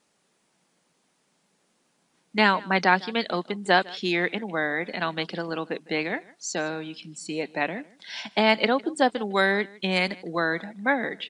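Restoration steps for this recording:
echo removal 155 ms −22.5 dB

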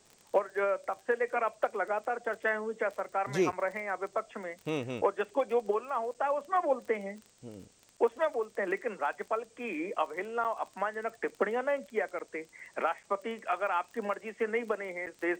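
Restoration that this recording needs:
click removal
repair the gap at 0:03.52/0:06.14/0:07.97/0:10.44/0:12.19/0:13.03/0:15.06, 7.8 ms
broadband denoise 16 dB, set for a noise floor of −61 dBFS

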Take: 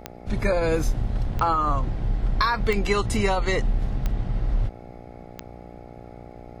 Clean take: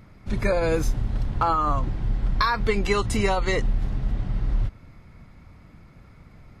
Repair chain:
click removal
hum removal 59.9 Hz, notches 14

